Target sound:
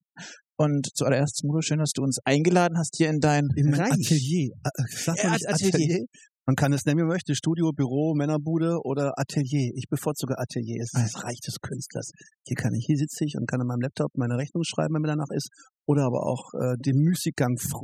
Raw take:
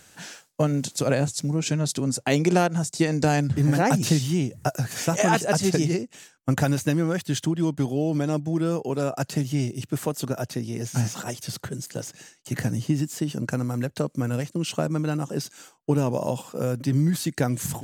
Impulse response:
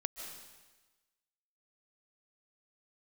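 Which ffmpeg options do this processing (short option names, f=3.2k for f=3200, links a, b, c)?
-filter_complex "[0:a]asplit=3[a][b][c];[a]afade=t=out:st=3.5:d=0.02[d];[b]equalizer=f=830:t=o:w=1.6:g=-7.5,afade=t=in:st=3.5:d=0.02,afade=t=out:st=5.55:d=0.02[e];[c]afade=t=in:st=5.55:d=0.02[f];[d][e][f]amix=inputs=3:normalize=0,afftfilt=real='re*gte(hypot(re,im),0.01)':imag='im*gte(hypot(re,im),0.01)':win_size=1024:overlap=0.75"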